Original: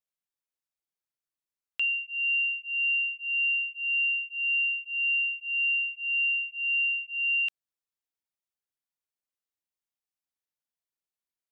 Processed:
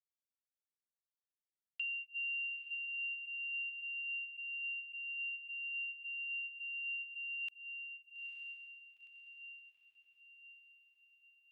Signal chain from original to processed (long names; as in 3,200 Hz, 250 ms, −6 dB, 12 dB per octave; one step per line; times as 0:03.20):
noise gate −34 dBFS, range −13 dB
downward compressor, threshold −31 dBFS, peak gain reduction 6.5 dB
feedback delay with all-pass diffusion 913 ms, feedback 51%, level −6 dB
level −6.5 dB